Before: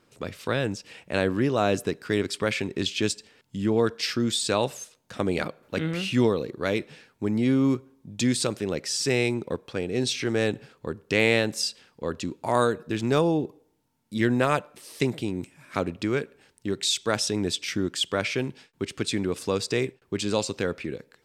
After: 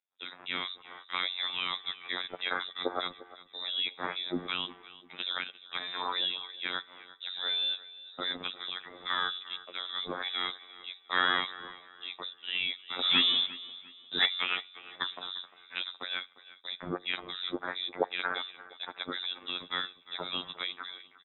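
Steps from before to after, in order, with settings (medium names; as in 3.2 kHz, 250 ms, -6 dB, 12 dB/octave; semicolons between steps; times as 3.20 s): gate -50 dBFS, range -28 dB; robot voice 90.8 Hz; peaking EQ 650 Hz -7.5 dB 0.26 oct; 12.99–14.26 s: waveshaping leveller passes 3; frequency inversion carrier 3.8 kHz; three-band isolator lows -23 dB, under 190 Hz, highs -15 dB, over 2.3 kHz; feedback delay 350 ms, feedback 33%, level -18 dB; trim +1.5 dB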